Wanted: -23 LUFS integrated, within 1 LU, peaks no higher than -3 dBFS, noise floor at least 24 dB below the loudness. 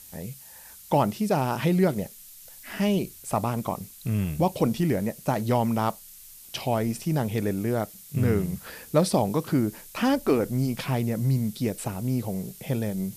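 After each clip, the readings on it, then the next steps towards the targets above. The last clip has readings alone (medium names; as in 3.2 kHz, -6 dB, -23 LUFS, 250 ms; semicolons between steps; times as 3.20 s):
noise floor -47 dBFS; noise floor target -51 dBFS; loudness -26.5 LUFS; peak level -9.5 dBFS; loudness target -23.0 LUFS
-> noise print and reduce 6 dB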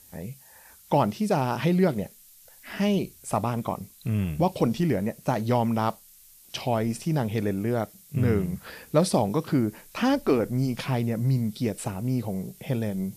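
noise floor -53 dBFS; loudness -26.5 LUFS; peak level -9.5 dBFS; loudness target -23.0 LUFS
-> trim +3.5 dB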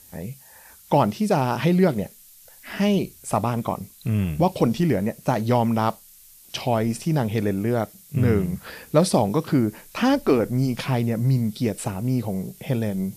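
loudness -23.0 LUFS; peak level -6.0 dBFS; noise floor -50 dBFS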